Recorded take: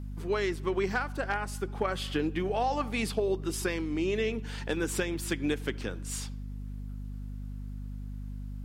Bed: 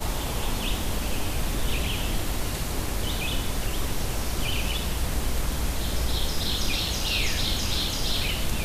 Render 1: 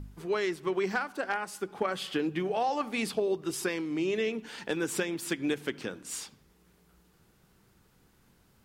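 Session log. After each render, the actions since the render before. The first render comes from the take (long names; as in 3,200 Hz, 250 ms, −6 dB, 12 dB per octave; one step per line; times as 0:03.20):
hum removal 50 Hz, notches 5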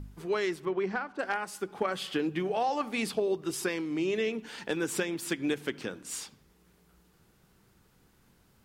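0:00.65–0:01.19: head-to-tape spacing loss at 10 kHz 21 dB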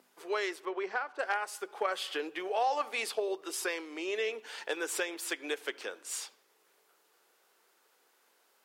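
high-pass filter 440 Hz 24 dB per octave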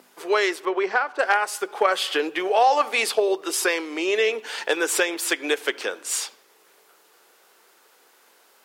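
level +12 dB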